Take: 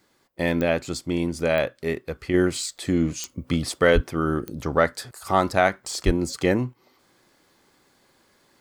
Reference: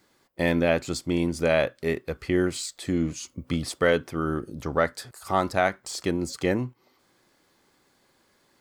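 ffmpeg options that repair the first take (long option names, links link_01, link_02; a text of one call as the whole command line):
ffmpeg -i in.wav -filter_complex "[0:a]adeclick=threshold=4,asplit=3[link_01][link_02][link_03];[link_01]afade=type=out:start_time=3.94:duration=0.02[link_04];[link_02]highpass=frequency=140:width=0.5412,highpass=frequency=140:width=1.3066,afade=type=in:start_time=3.94:duration=0.02,afade=type=out:start_time=4.06:duration=0.02[link_05];[link_03]afade=type=in:start_time=4.06:duration=0.02[link_06];[link_04][link_05][link_06]amix=inputs=3:normalize=0,asplit=3[link_07][link_08][link_09];[link_07]afade=type=out:start_time=6.05:duration=0.02[link_10];[link_08]highpass=frequency=140:width=0.5412,highpass=frequency=140:width=1.3066,afade=type=in:start_time=6.05:duration=0.02,afade=type=out:start_time=6.17:duration=0.02[link_11];[link_09]afade=type=in:start_time=6.17:duration=0.02[link_12];[link_10][link_11][link_12]amix=inputs=3:normalize=0,asetnsamples=nb_out_samples=441:pad=0,asendcmd='2.34 volume volume -3.5dB',volume=0dB" out.wav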